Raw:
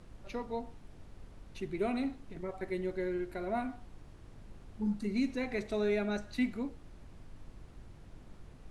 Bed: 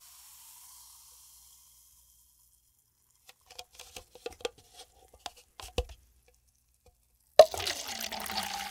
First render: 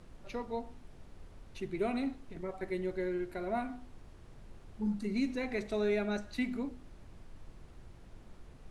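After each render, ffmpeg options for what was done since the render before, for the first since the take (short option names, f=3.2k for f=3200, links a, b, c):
-af "bandreject=f=50:t=h:w=4,bandreject=f=100:t=h:w=4,bandreject=f=150:t=h:w=4,bandreject=f=200:t=h:w=4,bandreject=f=250:t=h:w=4,bandreject=f=300:t=h:w=4"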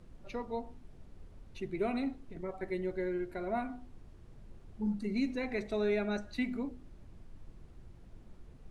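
-af "afftdn=nr=6:nf=-55"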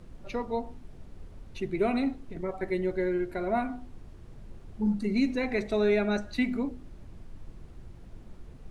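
-af "volume=6.5dB"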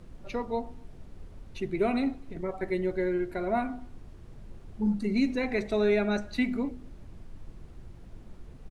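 -filter_complex "[0:a]asplit=2[a][b];[b]adelay=250.7,volume=-30dB,highshelf=f=4k:g=-5.64[c];[a][c]amix=inputs=2:normalize=0"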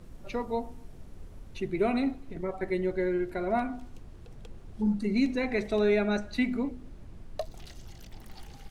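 -filter_complex "[1:a]volume=-19dB[a];[0:a][a]amix=inputs=2:normalize=0"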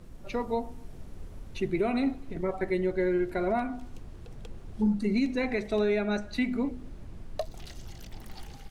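-af "alimiter=limit=-21dB:level=0:latency=1:release=402,dynaudnorm=f=140:g=5:m=3dB"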